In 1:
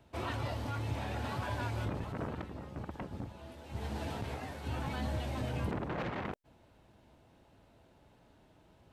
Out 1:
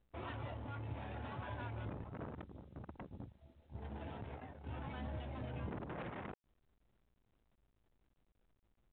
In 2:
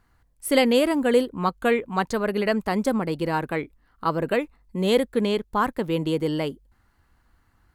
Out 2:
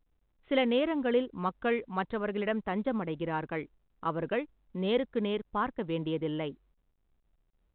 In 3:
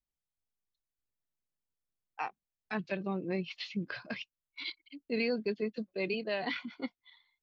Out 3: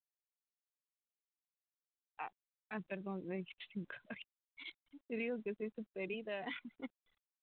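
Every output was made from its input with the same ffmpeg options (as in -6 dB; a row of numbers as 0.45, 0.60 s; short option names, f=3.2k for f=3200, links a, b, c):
-af "anlmdn=0.158,volume=-8dB" -ar 8000 -c:a pcm_mulaw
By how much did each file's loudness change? -8.0, -8.0, -8.5 LU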